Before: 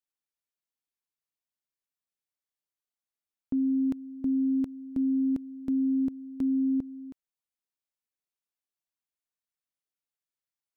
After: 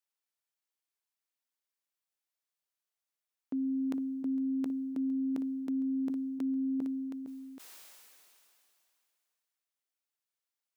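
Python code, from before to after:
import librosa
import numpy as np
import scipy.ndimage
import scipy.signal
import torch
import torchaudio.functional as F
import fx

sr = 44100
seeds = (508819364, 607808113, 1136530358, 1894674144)

p1 = scipy.signal.sosfilt(scipy.signal.bessel(2, 450.0, 'highpass', norm='mag', fs=sr, output='sos'), x)
p2 = p1 + fx.echo_single(p1, sr, ms=458, db=-18.0, dry=0)
p3 = fx.sustainer(p2, sr, db_per_s=21.0)
y = F.gain(torch.from_numpy(p3), 1.5).numpy()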